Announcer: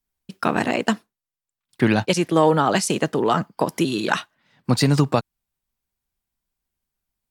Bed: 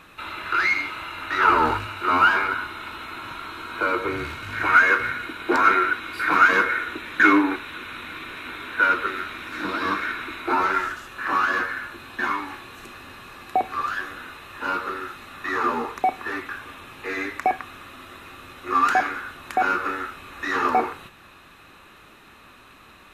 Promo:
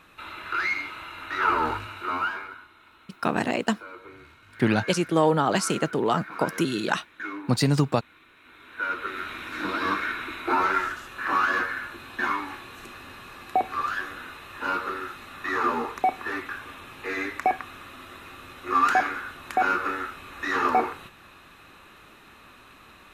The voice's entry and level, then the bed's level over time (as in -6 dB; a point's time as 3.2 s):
2.80 s, -4.0 dB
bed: 1.97 s -5.5 dB
2.68 s -19.5 dB
8.37 s -19.5 dB
9.3 s -1.5 dB